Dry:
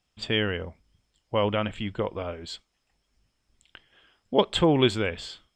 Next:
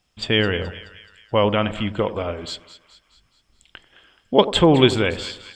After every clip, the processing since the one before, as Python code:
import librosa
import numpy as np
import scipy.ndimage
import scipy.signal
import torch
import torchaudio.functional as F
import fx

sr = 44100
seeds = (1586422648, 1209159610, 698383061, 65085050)

y = fx.echo_split(x, sr, split_hz=1200.0, low_ms=91, high_ms=213, feedback_pct=52, wet_db=-14.0)
y = y * 10.0 ** (6.5 / 20.0)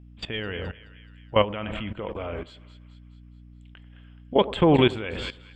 y = fx.add_hum(x, sr, base_hz=60, snr_db=17)
y = fx.high_shelf_res(y, sr, hz=3700.0, db=-9.0, q=1.5)
y = fx.level_steps(y, sr, step_db=16)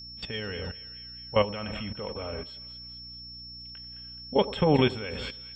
y = fx.notch_comb(x, sr, f0_hz=340.0)
y = y + 10.0 ** (-39.0 / 20.0) * np.sin(2.0 * np.pi * 5400.0 * np.arange(len(y)) / sr)
y = y * 10.0 ** (-2.5 / 20.0)